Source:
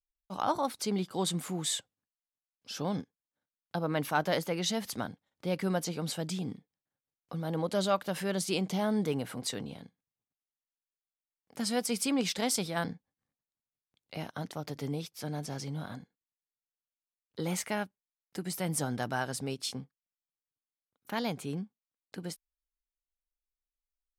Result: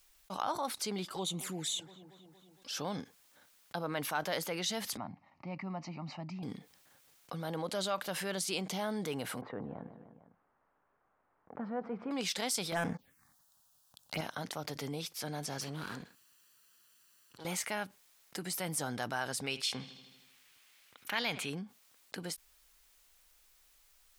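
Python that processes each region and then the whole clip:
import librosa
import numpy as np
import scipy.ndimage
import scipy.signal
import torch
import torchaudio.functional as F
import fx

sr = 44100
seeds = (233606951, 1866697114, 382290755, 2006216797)

y = fx.chain(x, sr, fx.env_flanger(rest_ms=3.7, full_db=-29.5),
    fx.echo_wet_lowpass(ms=231, feedback_pct=43, hz=1200.0, wet_db=-23.5), at=(1.05, 2.73))
y = fx.chain(y, sr, fx.highpass(hz=110.0, slope=12),
    fx.spacing_loss(db_at_10k=45),
    fx.fixed_phaser(hz=2300.0, stages=8), at=(4.97, 6.43))
y = fx.chain(y, sr, fx.lowpass(hz=1300.0, slope=24),
    fx.echo_feedback(ms=151, feedback_pct=42, wet_db=-19.0), at=(9.41, 12.11))
y = fx.chain(y, sr, fx.leveller(passes=3),
    fx.env_phaser(low_hz=370.0, high_hz=4400.0, full_db=-24.0), at=(12.72, 14.21))
y = fx.chain(y, sr, fx.lower_of_two(delay_ms=0.69),
    fx.highpass(hz=74.0, slope=12),
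    fx.auto_swell(attack_ms=354.0), at=(15.61, 17.45))
y = fx.chain(y, sr, fx.peak_eq(hz=2400.0, db=11.0, octaves=1.7),
    fx.echo_wet_lowpass(ms=79, feedback_pct=49, hz=3800.0, wet_db=-24.0), at=(19.44, 21.5))
y = fx.low_shelf(y, sr, hz=480.0, db=-10.0)
y = fx.env_flatten(y, sr, amount_pct=50)
y = y * 10.0 ** (-4.5 / 20.0)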